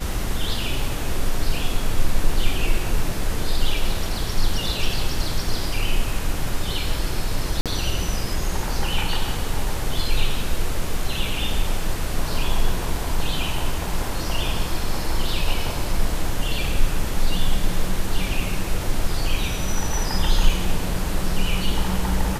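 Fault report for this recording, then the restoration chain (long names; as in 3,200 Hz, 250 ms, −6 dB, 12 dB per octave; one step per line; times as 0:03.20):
0:07.61–0:07.66: drop-out 47 ms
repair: repair the gap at 0:07.61, 47 ms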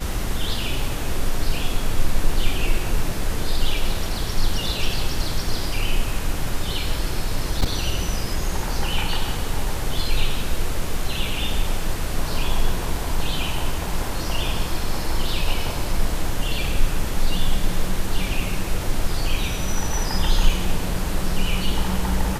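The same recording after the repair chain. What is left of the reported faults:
none of them is left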